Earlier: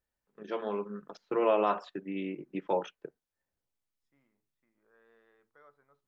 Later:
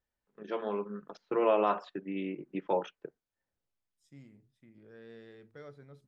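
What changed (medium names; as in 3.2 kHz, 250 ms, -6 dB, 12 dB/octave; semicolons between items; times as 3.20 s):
first voice: add distance through air 53 m; second voice: remove band-pass filter 1.1 kHz, Q 2.5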